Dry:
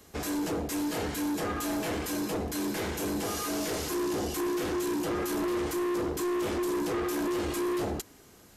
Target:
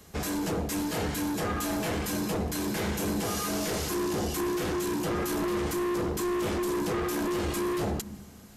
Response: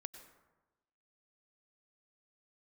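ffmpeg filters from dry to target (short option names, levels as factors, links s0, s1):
-filter_complex "[0:a]asplit=2[s0][s1];[s1]lowshelf=f=280:t=q:w=3:g=9.5[s2];[1:a]atrim=start_sample=2205,asetrate=28224,aresample=44100[s3];[s2][s3]afir=irnorm=-1:irlink=0,volume=0.316[s4];[s0][s4]amix=inputs=2:normalize=0"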